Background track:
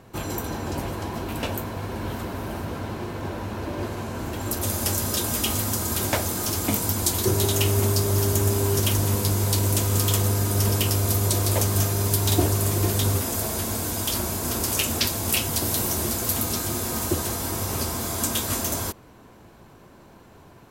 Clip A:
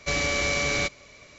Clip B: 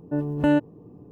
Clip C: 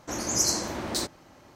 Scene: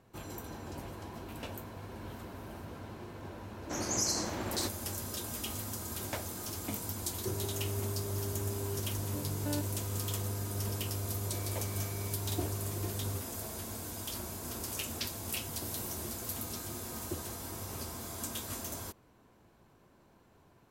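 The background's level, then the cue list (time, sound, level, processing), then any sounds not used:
background track -14 dB
3.62 s: add C -4.5 dB + peak limiter -15.5 dBFS
9.02 s: add B -17.5 dB
11.27 s: add A -14 dB + compression 2.5:1, threshold -44 dBFS

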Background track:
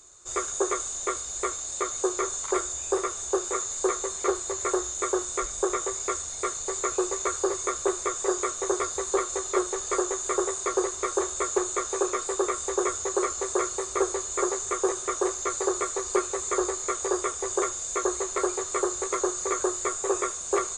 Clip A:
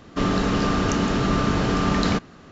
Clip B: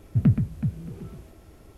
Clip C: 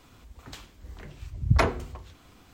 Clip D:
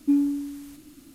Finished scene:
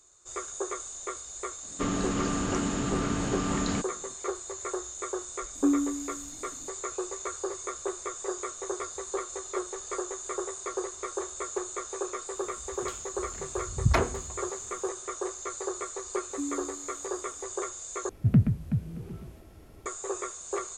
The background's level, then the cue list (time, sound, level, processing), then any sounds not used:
background track -7.5 dB
1.63 s: add A -9.5 dB + peaking EQ 280 Hz +4.5 dB 0.33 oct
5.55 s: add D -6 dB + bass shelf 180 Hz +8.5 dB
12.35 s: add C -2.5 dB
16.30 s: add D -13.5 dB
18.09 s: replace with B -1.5 dB

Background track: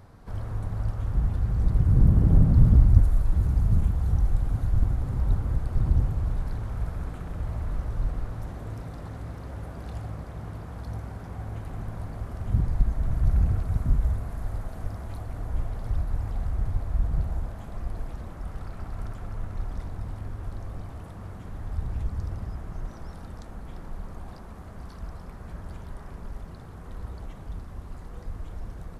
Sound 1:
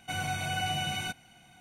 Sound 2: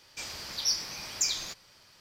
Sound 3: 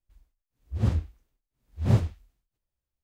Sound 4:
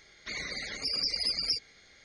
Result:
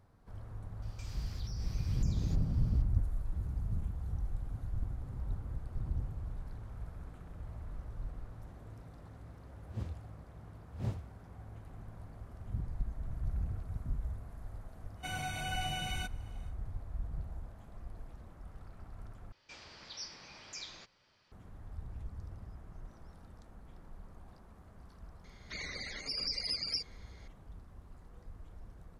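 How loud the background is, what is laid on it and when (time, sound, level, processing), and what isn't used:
background track -14 dB
0.82 s: add 2 -8 dB + compression 10:1, threshold -43 dBFS
8.94 s: add 3 -15.5 dB
14.95 s: add 1 -6 dB, fades 0.10 s
19.32 s: replace with 2 -8.5 dB + distance through air 160 m
25.24 s: add 4 -5 dB + treble shelf 8.8 kHz -3.5 dB

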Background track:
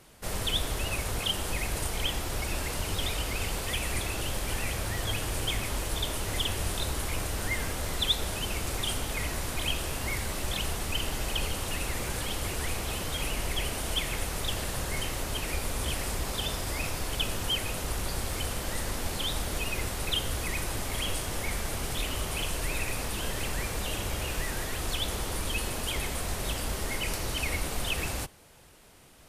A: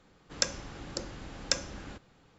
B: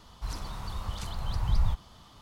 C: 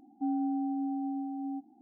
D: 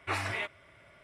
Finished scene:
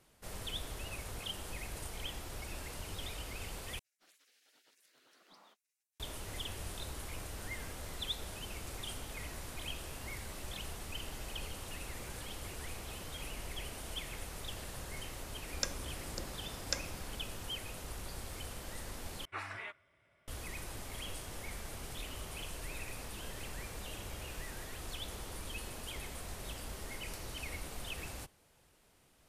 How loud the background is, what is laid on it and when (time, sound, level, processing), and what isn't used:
background track -12 dB
3.79 s: replace with B -17 dB + spectral gate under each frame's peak -30 dB weak
15.21 s: add A -7.5 dB
19.25 s: replace with D -13.5 dB + dynamic bell 1.4 kHz, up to +7 dB, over -48 dBFS, Q 1.3
not used: C

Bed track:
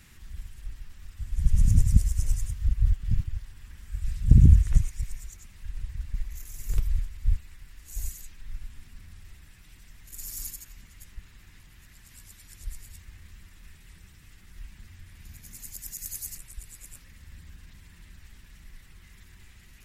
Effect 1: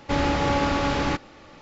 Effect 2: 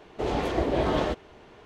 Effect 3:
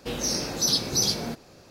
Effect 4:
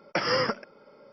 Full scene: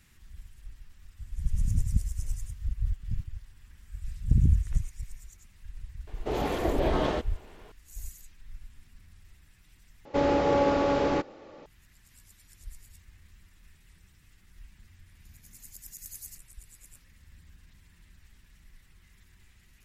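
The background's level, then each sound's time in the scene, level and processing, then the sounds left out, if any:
bed track -7 dB
6.07 s: add 2 -2 dB
10.05 s: replace with 1 -9 dB + peaking EQ 480 Hz +13.5 dB 1.6 oct
not used: 3, 4

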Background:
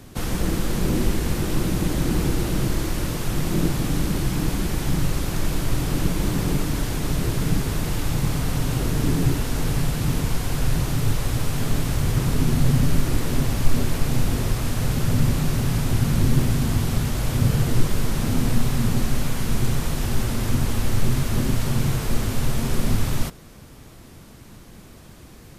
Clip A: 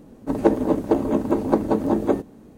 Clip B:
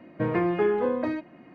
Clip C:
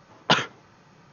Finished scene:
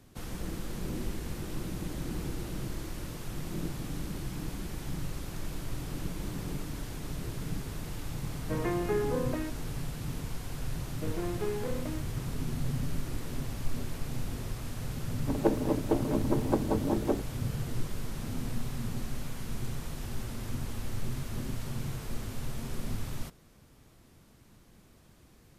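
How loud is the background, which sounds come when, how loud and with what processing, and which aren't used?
background -14 dB
8.30 s: add B -7 dB
10.82 s: add B -9.5 dB + median filter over 41 samples
15.00 s: add A -9 dB
not used: C

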